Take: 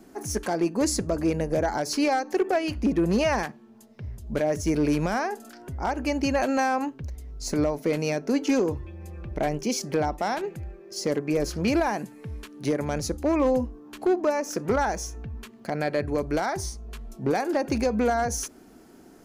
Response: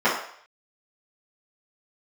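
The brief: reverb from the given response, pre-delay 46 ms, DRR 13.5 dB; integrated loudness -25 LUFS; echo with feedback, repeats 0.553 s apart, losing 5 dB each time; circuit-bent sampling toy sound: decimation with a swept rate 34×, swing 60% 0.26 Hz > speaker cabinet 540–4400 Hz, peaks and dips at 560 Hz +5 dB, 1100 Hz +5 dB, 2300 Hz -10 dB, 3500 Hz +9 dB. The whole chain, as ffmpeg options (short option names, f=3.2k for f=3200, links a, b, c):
-filter_complex "[0:a]aecho=1:1:553|1106|1659|2212|2765|3318|3871:0.562|0.315|0.176|0.0988|0.0553|0.031|0.0173,asplit=2[a][b];[1:a]atrim=start_sample=2205,adelay=46[c];[b][c]afir=irnorm=-1:irlink=0,volume=-33dB[d];[a][d]amix=inputs=2:normalize=0,acrusher=samples=34:mix=1:aa=0.000001:lfo=1:lforange=20.4:lforate=0.26,highpass=540,equalizer=f=560:t=q:w=4:g=5,equalizer=f=1.1k:t=q:w=4:g=5,equalizer=f=2.3k:t=q:w=4:g=-10,equalizer=f=3.5k:t=q:w=4:g=9,lowpass=f=4.4k:w=0.5412,lowpass=f=4.4k:w=1.3066,volume=2dB"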